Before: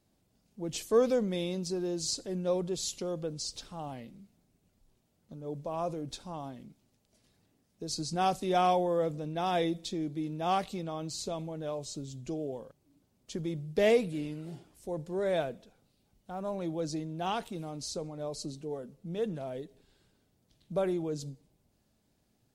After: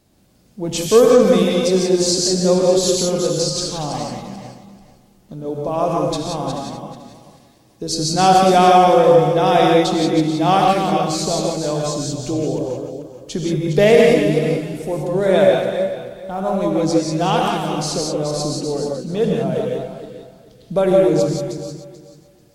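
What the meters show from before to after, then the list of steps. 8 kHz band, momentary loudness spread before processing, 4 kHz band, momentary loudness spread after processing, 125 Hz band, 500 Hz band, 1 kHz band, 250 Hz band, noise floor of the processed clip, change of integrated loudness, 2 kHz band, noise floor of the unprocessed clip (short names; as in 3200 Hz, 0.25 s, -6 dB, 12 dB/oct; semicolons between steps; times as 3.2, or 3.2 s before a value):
+17.0 dB, 15 LU, +17.0 dB, 17 LU, +16.5 dB, +17.0 dB, +17.0 dB, +16.5 dB, -52 dBFS, +16.5 dB, +16.5 dB, -73 dBFS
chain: regenerating reverse delay 0.218 s, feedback 45%, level -7 dB; non-linear reverb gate 0.2 s rising, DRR -0.5 dB; maximiser +14 dB; gain -1 dB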